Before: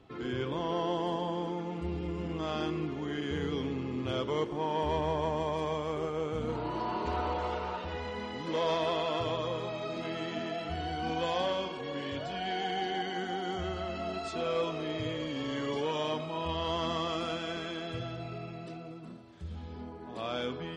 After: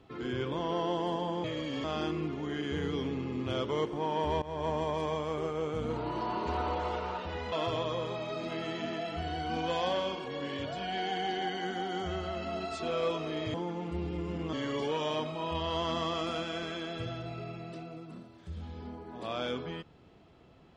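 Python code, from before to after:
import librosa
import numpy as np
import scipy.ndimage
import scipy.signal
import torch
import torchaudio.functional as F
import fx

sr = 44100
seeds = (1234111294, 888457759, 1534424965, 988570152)

y = fx.edit(x, sr, fx.swap(start_s=1.44, length_s=0.99, other_s=15.07, other_length_s=0.4),
    fx.fade_in_from(start_s=5.01, length_s=0.28, floor_db=-17.5),
    fx.cut(start_s=8.11, length_s=0.94), tone=tone)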